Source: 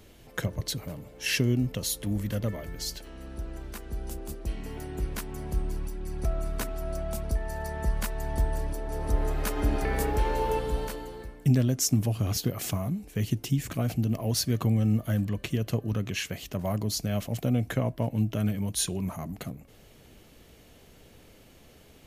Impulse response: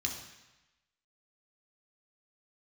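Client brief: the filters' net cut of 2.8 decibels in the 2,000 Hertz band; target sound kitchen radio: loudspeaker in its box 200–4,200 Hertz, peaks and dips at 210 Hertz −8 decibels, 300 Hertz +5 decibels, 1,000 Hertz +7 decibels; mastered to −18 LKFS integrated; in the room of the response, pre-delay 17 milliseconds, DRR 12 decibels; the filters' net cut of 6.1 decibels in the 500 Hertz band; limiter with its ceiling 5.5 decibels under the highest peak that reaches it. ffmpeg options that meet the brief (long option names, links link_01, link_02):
-filter_complex "[0:a]equalizer=frequency=500:width_type=o:gain=-8.5,equalizer=frequency=2000:width_type=o:gain=-3.5,alimiter=limit=-19.5dB:level=0:latency=1,asplit=2[link_01][link_02];[1:a]atrim=start_sample=2205,adelay=17[link_03];[link_02][link_03]afir=irnorm=-1:irlink=0,volume=-14.5dB[link_04];[link_01][link_04]amix=inputs=2:normalize=0,highpass=200,equalizer=frequency=210:width_type=q:width=4:gain=-8,equalizer=frequency=300:width_type=q:width=4:gain=5,equalizer=frequency=1000:width_type=q:width=4:gain=7,lowpass=frequency=4200:width=0.5412,lowpass=frequency=4200:width=1.3066,volume=19.5dB"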